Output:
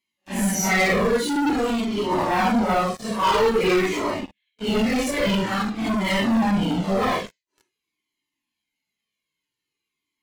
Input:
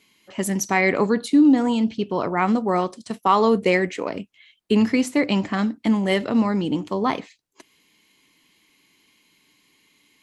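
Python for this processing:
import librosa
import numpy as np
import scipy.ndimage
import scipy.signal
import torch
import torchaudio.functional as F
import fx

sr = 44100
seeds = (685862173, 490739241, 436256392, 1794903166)

y = fx.phase_scramble(x, sr, seeds[0], window_ms=200)
y = fx.leveller(y, sr, passes=5)
y = fx.peak_eq(y, sr, hz=400.0, db=-10.0, octaves=0.28, at=(5.47, 6.19))
y = fx.comb_cascade(y, sr, direction='falling', hz=0.49)
y = y * librosa.db_to_amplitude(-8.0)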